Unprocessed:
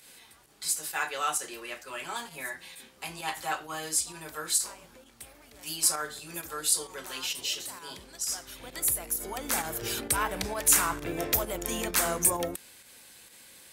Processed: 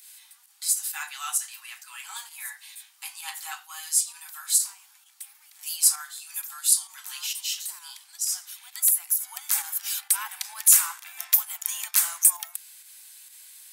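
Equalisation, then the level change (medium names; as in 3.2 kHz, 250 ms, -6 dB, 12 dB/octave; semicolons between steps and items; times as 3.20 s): steep high-pass 750 Hz 96 dB/octave; tilt EQ +4 dB/octave; -7.0 dB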